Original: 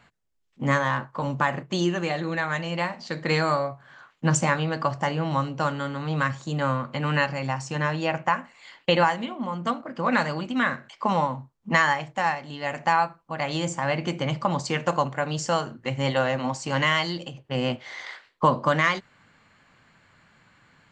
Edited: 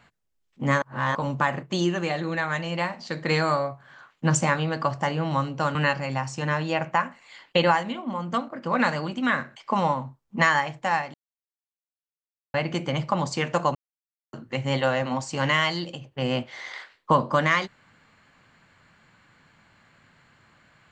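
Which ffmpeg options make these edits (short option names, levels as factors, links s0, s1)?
-filter_complex "[0:a]asplit=8[s0][s1][s2][s3][s4][s5][s6][s7];[s0]atrim=end=0.822[s8];[s1]atrim=start=0.818:end=1.152,asetpts=PTS-STARTPTS,areverse[s9];[s2]atrim=start=1.148:end=5.752[s10];[s3]atrim=start=7.078:end=12.47,asetpts=PTS-STARTPTS,afade=t=out:st=5.388:d=0.004:c=hsin[s11];[s4]atrim=start=12.47:end=13.87,asetpts=PTS-STARTPTS,volume=0[s12];[s5]atrim=start=13.87:end=15.08,asetpts=PTS-STARTPTS,afade=t=in:d=0.004:c=hsin,afade=t=out:st=1.206:d=0.004:c=hsin[s13];[s6]atrim=start=15.08:end=15.66,asetpts=PTS-STARTPTS,volume=0[s14];[s7]atrim=start=15.66,asetpts=PTS-STARTPTS,afade=t=in:d=0.004:c=hsin[s15];[s8][s9]acrossfade=d=0.004:c1=hsin:c2=hsin[s16];[s16][s10]acrossfade=d=0.004:c1=hsin:c2=hsin[s17];[s11][s12][s13][s14][s15]concat=n=5:v=0:a=1[s18];[s17][s18]acrossfade=d=0.004:c1=hsin:c2=hsin"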